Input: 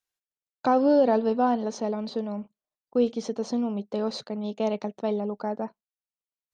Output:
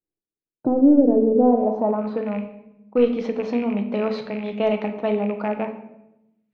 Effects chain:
loose part that buzzes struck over −36 dBFS, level −35 dBFS
in parallel at −6 dB: gain into a clipping stage and back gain 17.5 dB
on the sum: rectangular room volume 280 cubic metres, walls mixed, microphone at 0.59 metres
low-pass filter sweep 350 Hz → 2,300 Hz, 0:01.30–0:02.40

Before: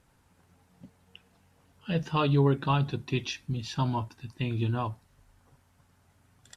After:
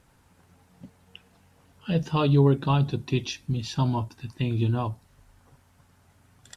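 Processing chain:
dynamic equaliser 1,700 Hz, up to −7 dB, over −47 dBFS, Q 0.74
level +4.5 dB

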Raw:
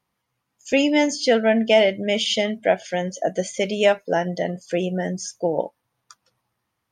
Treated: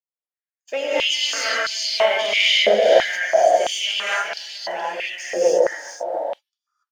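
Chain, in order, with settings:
noise gate −40 dBFS, range −25 dB
parametric band 8,400 Hz −4.5 dB 0.87 octaves
leveller curve on the samples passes 1
transient designer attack +1 dB, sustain +6 dB
on a send: single-tap delay 424 ms −6 dB
on the sum: reverb whose tail is shaped and stops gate 310 ms rising, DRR −8 dB
high-pass on a step sequencer 3 Hz 500–4,300 Hz
level −11.5 dB

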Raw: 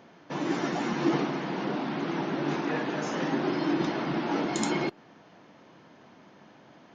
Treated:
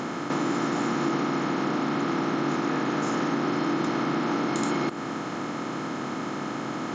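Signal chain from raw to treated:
compressor on every frequency bin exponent 0.4
thirty-one-band graphic EQ 125 Hz +4 dB, 250 Hz +5 dB, 1,250 Hz +10 dB
downward compressor 2.5 to 1, threshold −25 dBFS, peak gain reduction 6.5 dB

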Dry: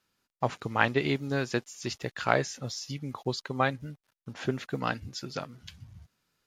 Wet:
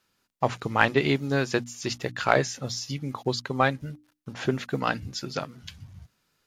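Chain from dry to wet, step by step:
in parallel at −9 dB: hard clipping −18.5 dBFS, distortion −11 dB
on the sum: mains-hum notches 60/120/180/240/300 Hz
level +2 dB

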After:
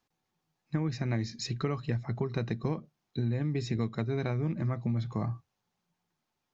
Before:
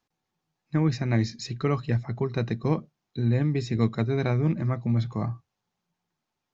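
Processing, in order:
downward compressor, threshold −27 dBFS, peak gain reduction 10 dB

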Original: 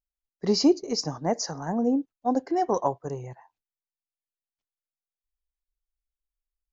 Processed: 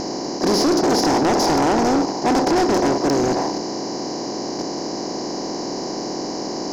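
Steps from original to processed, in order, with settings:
compressor on every frequency bin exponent 0.2
0:00.78–0:02.62: parametric band 860 Hz +6.5 dB 0.56 octaves
soft clipping −17.5 dBFS, distortion −8 dB
level +4 dB

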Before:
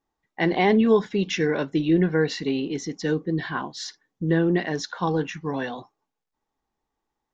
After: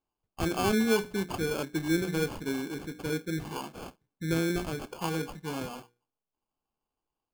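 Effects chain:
mains-hum notches 60/120/180/240/300/360/420/480 Hz
decimation without filtering 23×
level −7 dB

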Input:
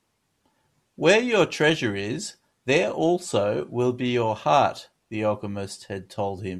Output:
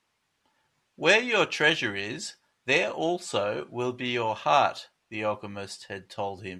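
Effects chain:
low-pass filter 1,600 Hz 6 dB per octave
tilt shelving filter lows −9.5 dB

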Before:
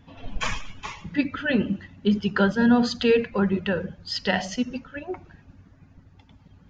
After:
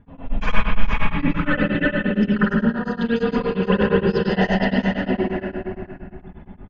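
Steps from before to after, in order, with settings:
feedback delay that plays each chunk backwards 234 ms, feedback 49%, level −1.5 dB
comb filter 4.9 ms, depth 33%
low-pass that shuts in the quiet parts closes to 1,800 Hz, open at −12 dBFS
compressor whose output falls as the input rises −23 dBFS, ratio −1
spectral tilt −1.5 dB per octave
mains-hum notches 50/100/150/200/250 Hz
spring reverb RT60 1.6 s, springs 48/52 ms, chirp 60 ms, DRR −9.5 dB
tremolo along a rectified sine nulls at 8.6 Hz
level −4 dB

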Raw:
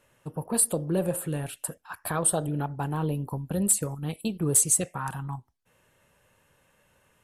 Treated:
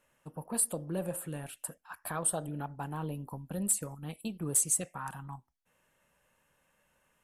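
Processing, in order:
graphic EQ with 15 bands 100 Hz −12 dB, 400 Hz −5 dB, 4,000 Hz −3 dB
level −6 dB

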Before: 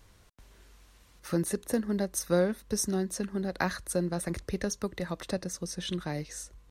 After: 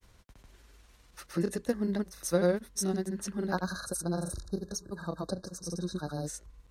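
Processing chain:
time-frequency box erased 0:03.60–0:06.23, 1,700–3,700 Hz
granular cloud, grains 20 per second, pitch spread up and down by 0 semitones

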